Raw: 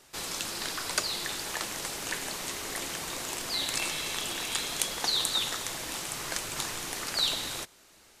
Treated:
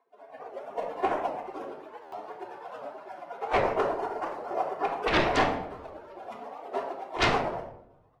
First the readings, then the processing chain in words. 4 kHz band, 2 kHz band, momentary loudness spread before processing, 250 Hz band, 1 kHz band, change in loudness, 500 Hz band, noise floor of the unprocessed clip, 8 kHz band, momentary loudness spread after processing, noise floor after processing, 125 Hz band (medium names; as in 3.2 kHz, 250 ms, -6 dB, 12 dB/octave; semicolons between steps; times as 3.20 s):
-10.0 dB, +1.5 dB, 7 LU, +7.0 dB, +10.0 dB, +1.0 dB, +12.0 dB, -58 dBFS, -20.5 dB, 18 LU, -59 dBFS, +6.0 dB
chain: spectral gate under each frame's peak -20 dB weak; Chebyshev band-pass 390–830 Hz, order 2; level rider gain up to 7 dB; sine folder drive 18 dB, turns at -27.5 dBFS; tremolo 8.7 Hz, depth 72%; simulated room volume 1900 m³, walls furnished, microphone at 3.2 m; buffer glitch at 2.02 s, samples 512, times 8; warped record 78 rpm, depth 160 cents; trim +8 dB